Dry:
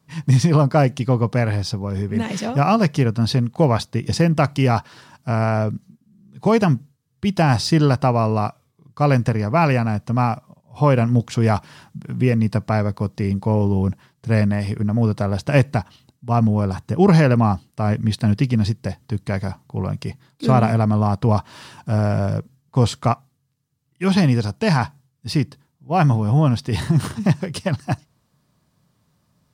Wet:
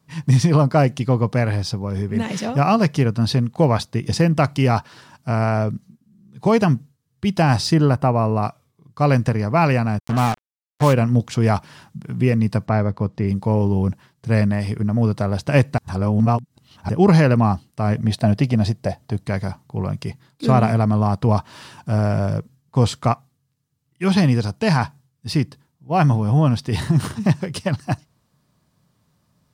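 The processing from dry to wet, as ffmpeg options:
-filter_complex "[0:a]asettb=1/sr,asplit=3[a][b][c];[a]atrim=end=7.744[d];[b]atrim=start=7.74:end=8.43,asetpts=PTS-STARTPTS,afade=t=in:d=0.004:c=qsin,afade=t=out:st=0.686:d=0.004:c=qsin,equalizer=f=4.7k:t=o:w=1.6:g=-10[e];[c]atrim=start=8.426[f];[d][e]acrossfade=d=0.004:c1=hsin:c2=qsin[g];[g][f]acrossfade=d=0.004:c1=qsin:c2=hsin,asplit=3[h][i][j];[h]afade=t=out:st=9.98:d=0.02[k];[i]acrusher=bits=3:mix=0:aa=0.5,afade=t=in:st=9.98:d=0.02,afade=t=out:st=10.92:d=0.02[l];[j]afade=t=in:st=10.92:d=0.02[m];[k][l][m]amix=inputs=3:normalize=0,asplit=3[n][o][p];[n]afade=t=out:st=12.65:d=0.02[q];[o]aemphasis=mode=reproduction:type=75fm,afade=t=in:st=12.65:d=0.02,afade=t=out:st=13.27:d=0.02[r];[p]afade=t=in:st=13.27:d=0.02[s];[q][r][s]amix=inputs=3:normalize=0,asettb=1/sr,asplit=3[t][u][v];[t]atrim=end=17.964[w];[u]atrim=start=17.96:end=19.25,asetpts=PTS-STARTPTS,afade=t=in:d=0.004:c=qsin,afade=t=out:st=1.286:d=0.004:c=qsin,equalizer=f=660:w=2.7:g=12.5[x];[v]atrim=start=19.246[y];[w][x]acrossfade=d=0.004:c1=hsin:c2=qsin[z];[z][y]acrossfade=d=0.004:c1=qsin:c2=hsin,asplit=3[aa][ab][ac];[aa]atrim=end=15.782[ad];[ab]atrim=start=15.778:end=16.892,asetpts=PTS-STARTPTS,areverse[ae];[ac]atrim=start=16.888[af];[ad][ae]acrossfade=d=0.004:c1=hsin:c2=hsin[ag];[ag][af]acrossfade=d=0.004:c1=hsin:c2=hsin"

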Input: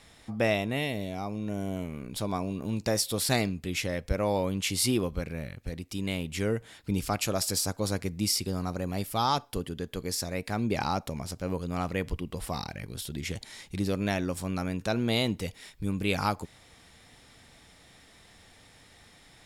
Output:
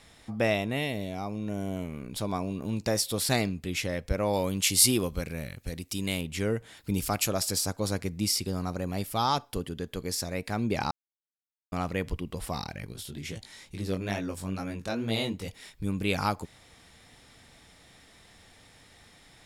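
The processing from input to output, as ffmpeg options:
-filter_complex "[0:a]asettb=1/sr,asplit=3[a][b][c];[a]atrim=end=4.334[d];[b]atrim=start=4.33:end=6.21,asetpts=PTS-STARTPTS,afade=t=in:d=0.004:c=qsin,afade=t=out:st=1.876:d=0.004:c=qsin,highshelf=f=4.5k:g=10.5[e];[c]atrim=start=6.206[f];[d][e]acrossfade=d=0.004:c1=hsin:c2=qsin[g];[g][f]acrossfade=d=0.004:c1=qsin:c2=hsin,asettb=1/sr,asplit=3[h][i][j];[h]atrim=end=6.774[k];[i]atrim=start=6.77:end=7.28,asetpts=PTS-STARTPTS,afade=t=in:d=0.004:c=qsin,afade=t=out:st=0.506:d=0.004:c=qsin,highshelf=f=9.2k:g=11[l];[j]atrim=start=7.276[m];[k][l]acrossfade=d=0.004:c1=hsin:c2=qsin[n];[n][m]acrossfade=d=0.004:c1=qsin:c2=hsin,asettb=1/sr,asplit=3[o][p][q];[o]atrim=end=12.934[r];[p]atrim=start=12.93:end=15.48,asetpts=PTS-STARTPTS,afade=t=in:d=0.004:c=qsin,afade=t=out:st=2.546:d=0.004:c=qsin,flanger=delay=18:depth=4.2:speed=2.3[s];[q]atrim=start=15.476[t];[r][s]acrossfade=d=0.004:c1=hsin:c2=qsin[u];[u][t]acrossfade=d=0.004:c1=qsin:c2=hsin,asplit=3[v][w][x];[v]atrim=end=10.91,asetpts=PTS-STARTPTS,afade=t=out:st=10.906:d=0.004:c=hsin[y];[w]atrim=start=10.91:end=11.72,asetpts=PTS-STARTPTS,volume=0[z];[x]atrim=start=11.72,asetpts=PTS-STARTPTS,afade=t=in:d=0.004:c=hsin[aa];[y][z][aa]concat=n=3:v=0:a=1"

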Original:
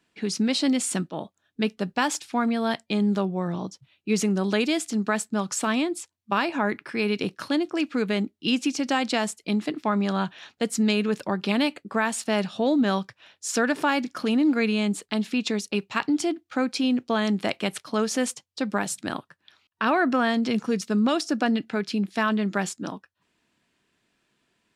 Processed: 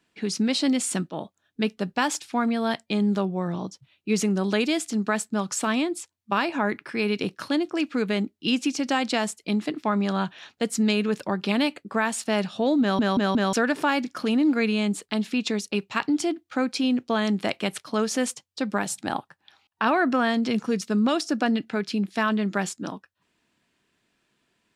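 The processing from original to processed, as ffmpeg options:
-filter_complex "[0:a]asettb=1/sr,asplit=3[a][b][c];[a]atrim=end=18.894[d];[b]atrim=start=18.89:end=19.88,asetpts=PTS-STARTPTS,afade=t=in:d=0.004:c=qsin,afade=t=out:st=0.986:d=0.004:c=qsin,equalizer=f=810:t=o:w=0.29:g=12[e];[c]atrim=start=19.876[f];[d][e]acrossfade=d=0.004:c1=hsin:c2=qsin[g];[g][f]acrossfade=d=0.004:c1=qsin:c2=hsin,asplit=5[h][i][j][k][l];[h]atrim=end=12.992[m];[i]atrim=start=12.808:end=12.992[n];[j]atrim=start=12.808:end=12.992[o];[k]atrim=start=12.808:end=12.992[p];[l]atrim=start=13.528[q];[m][n]acrossfade=d=0.004:c1=hsin:c2=hsin[r];[r][o]acrossfade=d=0.004:c1=hsin:c2=hsin[s];[s][p]acrossfade=d=0.004:c1=hsin:c2=hsin[t];[t][q]acrossfade=d=0.004:c1=hsin:c2=hsin"

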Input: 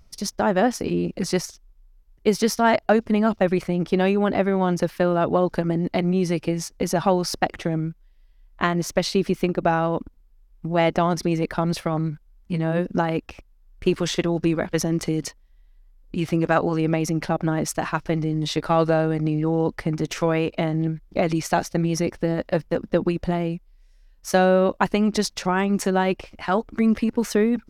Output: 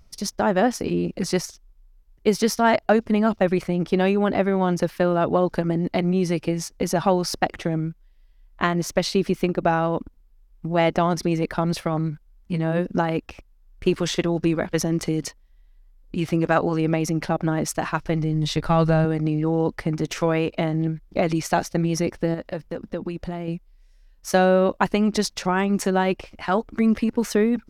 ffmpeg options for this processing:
-filter_complex "[0:a]asettb=1/sr,asplit=3[a][b][c];[a]atrim=end=17.924[d];[b]atrim=start=17.92:end=19.05,asetpts=PTS-STARTPTS,afade=t=in:d=0.004:c=qsin,afade=t=out:st=1.126:d=0.004:c=qsin,asubboost=boost=11.5:cutoff=160[e];[c]atrim=start=19.046[f];[d][e]acrossfade=d=0.004:c1=hsin:c2=qsin[g];[g][f]acrossfade=d=0.004:c1=qsin:c2=hsin,asettb=1/sr,asplit=3[h][i][j];[h]atrim=end=22.344[k];[i]atrim=start=22.34:end=23.48,asetpts=PTS-STARTPTS,afade=t=in:d=0.004:c=qsin,afade=t=out:st=1.136:d=0.004:c=qsin,acompressor=threshold=-30dB:ratio=2:attack=3.2:release=140:knee=1:detection=peak[l];[j]atrim=start=23.476[m];[k][l]acrossfade=d=0.004:c1=hsin:c2=qsin[n];[n][m]acrossfade=d=0.004:c1=qsin:c2=hsin"

